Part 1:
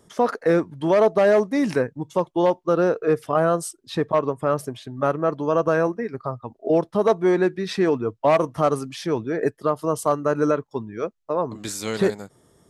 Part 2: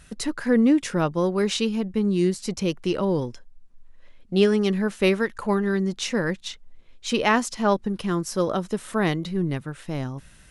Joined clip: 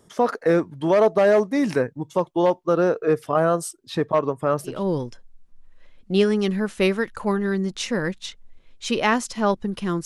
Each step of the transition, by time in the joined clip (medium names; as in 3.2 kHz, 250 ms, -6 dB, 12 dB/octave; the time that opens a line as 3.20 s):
part 1
4.75 s: go over to part 2 from 2.97 s, crossfade 0.24 s